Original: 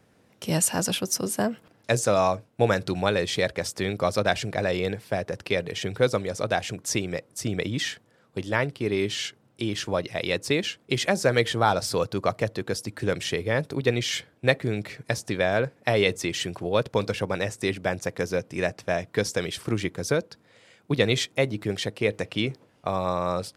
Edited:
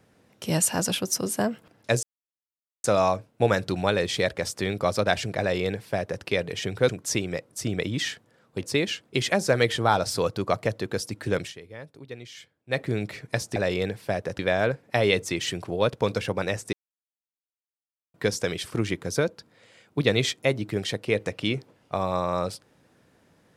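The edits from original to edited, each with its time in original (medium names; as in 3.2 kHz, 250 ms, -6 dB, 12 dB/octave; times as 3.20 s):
2.03 s: insert silence 0.81 s
4.59–5.42 s: copy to 15.32 s
6.08–6.69 s: delete
8.43–10.39 s: delete
13.17–14.57 s: dip -16.5 dB, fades 0.12 s
17.66–19.07 s: mute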